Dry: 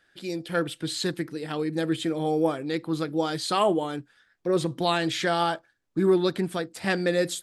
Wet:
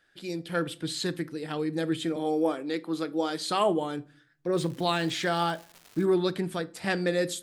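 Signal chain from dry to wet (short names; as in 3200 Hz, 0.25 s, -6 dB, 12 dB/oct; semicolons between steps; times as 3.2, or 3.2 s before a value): 2.16–3.48 HPF 200 Hz 24 dB/oct; 4.54–6.04 crackle 380/s -36 dBFS; on a send: reverb RT60 0.45 s, pre-delay 7 ms, DRR 16 dB; on the sum: gain -2.5 dB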